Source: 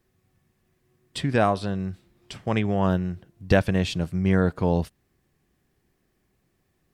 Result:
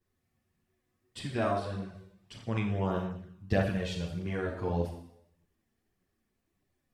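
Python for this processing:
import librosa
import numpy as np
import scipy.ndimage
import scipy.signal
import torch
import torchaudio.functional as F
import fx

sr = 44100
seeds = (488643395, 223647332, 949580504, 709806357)

y = fx.rev_schroeder(x, sr, rt60_s=0.75, comb_ms=27, drr_db=2.0)
y = fx.chorus_voices(y, sr, voices=2, hz=0.83, base_ms=11, depth_ms=2.3, mix_pct=65)
y = y * 10.0 ** (-8.0 / 20.0)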